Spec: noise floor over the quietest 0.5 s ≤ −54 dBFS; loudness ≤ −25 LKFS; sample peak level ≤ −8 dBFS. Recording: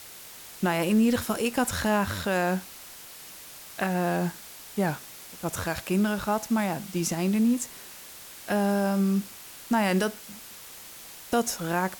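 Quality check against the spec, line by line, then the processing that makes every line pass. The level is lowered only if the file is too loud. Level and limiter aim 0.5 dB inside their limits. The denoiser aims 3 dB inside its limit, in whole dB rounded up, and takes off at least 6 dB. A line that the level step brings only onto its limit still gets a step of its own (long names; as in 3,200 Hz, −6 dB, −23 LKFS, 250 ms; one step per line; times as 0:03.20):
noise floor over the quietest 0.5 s −45 dBFS: out of spec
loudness −27.0 LKFS: in spec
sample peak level −12.5 dBFS: in spec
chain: broadband denoise 12 dB, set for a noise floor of −45 dBFS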